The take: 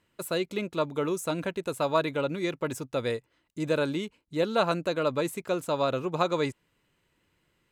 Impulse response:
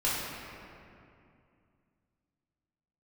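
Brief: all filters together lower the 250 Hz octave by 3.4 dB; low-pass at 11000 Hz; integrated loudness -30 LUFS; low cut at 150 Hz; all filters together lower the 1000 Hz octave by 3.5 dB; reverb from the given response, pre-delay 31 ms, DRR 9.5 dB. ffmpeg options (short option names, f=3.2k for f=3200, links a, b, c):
-filter_complex "[0:a]highpass=150,lowpass=11k,equalizer=f=250:t=o:g=-4,equalizer=f=1k:t=o:g=-4.5,asplit=2[a][b];[1:a]atrim=start_sample=2205,adelay=31[c];[b][c]afir=irnorm=-1:irlink=0,volume=-19.5dB[d];[a][d]amix=inputs=2:normalize=0,volume=1.5dB"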